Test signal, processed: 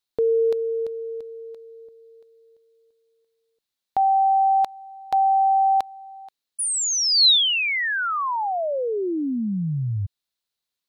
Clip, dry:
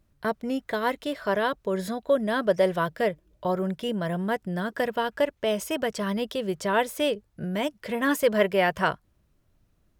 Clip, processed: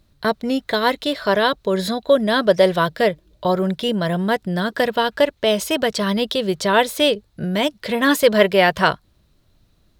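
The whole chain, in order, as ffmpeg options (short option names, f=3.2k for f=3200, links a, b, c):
-af "equalizer=f=4k:t=o:w=0.54:g=11,volume=7.5dB"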